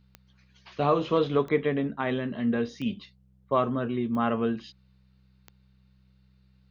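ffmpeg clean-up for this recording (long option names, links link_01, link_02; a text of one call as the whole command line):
ffmpeg -i in.wav -af "adeclick=threshold=4,bandreject=frequency=64.1:width_type=h:width=4,bandreject=frequency=128.2:width_type=h:width=4,bandreject=frequency=192.3:width_type=h:width=4" out.wav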